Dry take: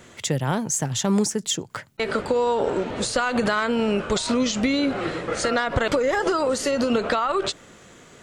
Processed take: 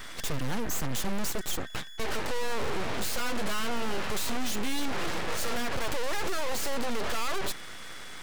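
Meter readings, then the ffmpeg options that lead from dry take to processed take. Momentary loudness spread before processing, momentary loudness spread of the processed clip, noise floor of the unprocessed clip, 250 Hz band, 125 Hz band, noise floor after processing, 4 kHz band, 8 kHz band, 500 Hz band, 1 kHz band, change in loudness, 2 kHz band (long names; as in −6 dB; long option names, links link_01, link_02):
5 LU, 4 LU, −49 dBFS, −12.0 dB, −9.5 dB, −40 dBFS, −5.5 dB, −7.5 dB, −12.5 dB, −8.5 dB, −9.5 dB, −7.0 dB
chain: -af "aeval=exprs='val(0)+0.00631*sin(2*PI*1700*n/s)':channel_layout=same,aeval=exprs='(tanh(35.5*val(0)+0.4)-tanh(0.4))/35.5':channel_layout=same,aeval=exprs='abs(val(0))':channel_layout=same,volume=6dB"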